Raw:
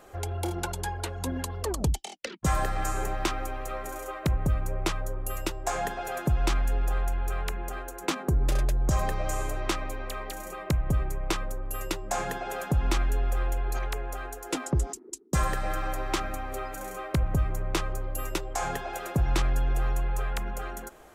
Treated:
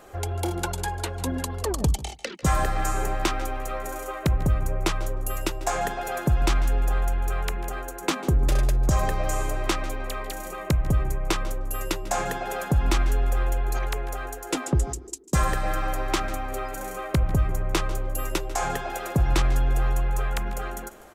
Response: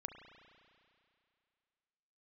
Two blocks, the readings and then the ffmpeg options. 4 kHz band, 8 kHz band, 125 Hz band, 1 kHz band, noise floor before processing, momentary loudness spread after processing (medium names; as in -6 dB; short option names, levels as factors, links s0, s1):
+3.5 dB, +3.5 dB, +3.5 dB, +3.5 dB, -43 dBFS, 8 LU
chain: -filter_complex "[0:a]aecho=1:1:160:0.0841,asplit=2[s0][s1];[1:a]atrim=start_sample=2205,atrim=end_sample=4410,adelay=145[s2];[s1][s2]afir=irnorm=-1:irlink=0,volume=0.2[s3];[s0][s3]amix=inputs=2:normalize=0,volume=1.5"